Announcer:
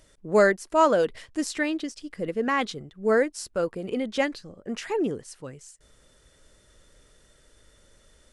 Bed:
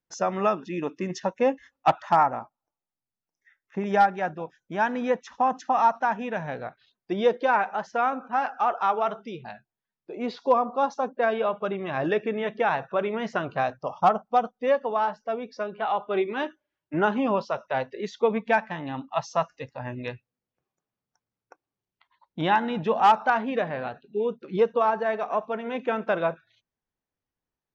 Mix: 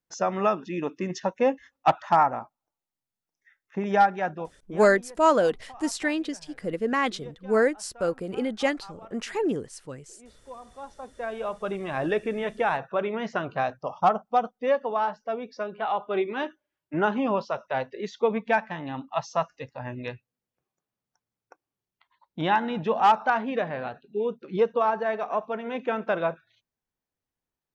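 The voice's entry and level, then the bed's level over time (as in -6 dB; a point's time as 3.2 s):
4.45 s, 0.0 dB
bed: 4.53 s 0 dB
5.1 s -22.5 dB
10.52 s -22.5 dB
11.73 s -1 dB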